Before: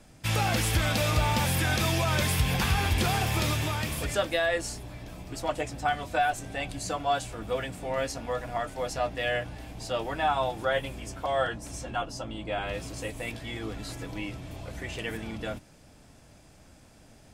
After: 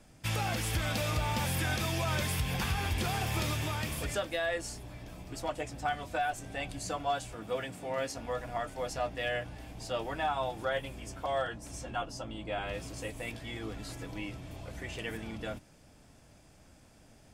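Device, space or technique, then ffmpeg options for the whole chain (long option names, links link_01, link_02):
limiter into clipper: -filter_complex "[0:a]bandreject=frequency=4000:width=30,alimiter=limit=-17.5dB:level=0:latency=1:release=370,asoftclip=type=hard:threshold=-19dB,asettb=1/sr,asplit=3[link_01][link_02][link_03];[link_01]atrim=end=7.364[link_04];[link_02]atrim=start=7.36:end=8.17,asetpts=PTS-STARTPTS,afade=type=in:duration=0.004:curve=qsin,afade=type=out:start_time=0.806:duration=0.004:curve=qsin,highpass=110[link_05];[link_03]atrim=start=8.166[link_06];[link_04][link_05]acrossfade=duration=0.004:curve1=hsin:curve2=qsin[link_07];[link_07][link_06]acrossfade=duration=0.004:curve1=qsin:curve2=hsin,volume=-4dB"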